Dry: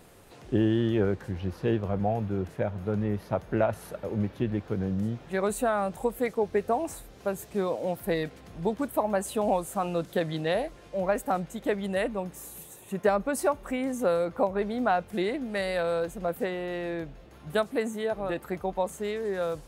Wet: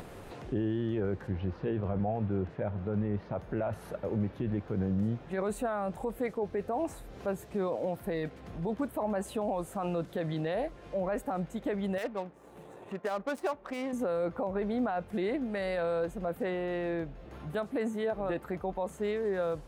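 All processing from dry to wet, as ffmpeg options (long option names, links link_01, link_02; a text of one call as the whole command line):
ffmpeg -i in.wav -filter_complex "[0:a]asettb=1/sr,asplit=3[link_01][link_02][link_03];[link_01]atrim=end=1.274[link_04];[link_02]atrim=start=1.27:end=3.35,asetpts=PTS-STARTPTS,afade=type=in:duration=0.004:curve=qsin,afade=type=out:start_time=2.076:duration=0.004:curve=qsin,lowpass=4500,bandreject=frequency=60:width_type=h:width=6,bandreject=frequency=120:width_type=h:width=6[link_05];[link_03]atrim=start=3.346[link_06];[link_04][link_05]acrossfade=duration=0.004:curve1=hsin:curve2=qsin[link_07];[link_07][link_06]acrossfade=duration=0.004:curve1=qsin:curve2=hsin,asettb=1/sr,asplit=3[link_08][link_09][link_10];[link_08]atrim=end=11.984[link_11];[link_09]atrim=start=11.98:end=13.93,asetpts=PTS-STARTPTS,afade=type=in:duration=0.004:curve=qsin,afade=type=out:start_time=1.946:duration=0.004:curve=qsin,adynamicsmooth=sensitivity=6:basefreq=880,aemphasis=mode=production:type=riaa[link_12];[link_10]atrim=start=13.926[link_13];[link_11][link_12]acrossfade=duration=0.004:curve1=hsin:curve2=qsin[link_14];[link_14][link_13]acrossfade=duration=0.004:curve1=qsin:curve2=hsin,alimiter=limit=-23dB:level=0:latency=1:release=24,highshelf=frequency=3700:gain=-11.5,acompressor=mode=upward:threshold=-37dB:ratio=2.5" out.wav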